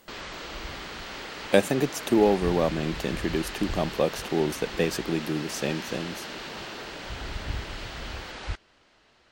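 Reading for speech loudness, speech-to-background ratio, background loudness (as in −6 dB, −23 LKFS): −27.0 LKFS, 9.5 dB, −36.5 LKFS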